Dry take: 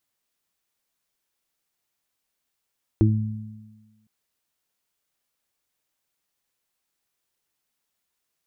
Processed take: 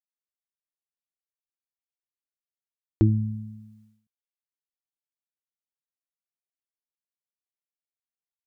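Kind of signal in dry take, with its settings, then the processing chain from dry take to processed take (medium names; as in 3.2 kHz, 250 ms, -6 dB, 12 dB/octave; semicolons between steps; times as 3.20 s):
additive tone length 1.06 s, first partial 108 Hz, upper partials -6.5/-0.5 dB, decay 1.18 s, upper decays 1.45/0.26 s, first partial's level -14 dB
expander -54 dBFS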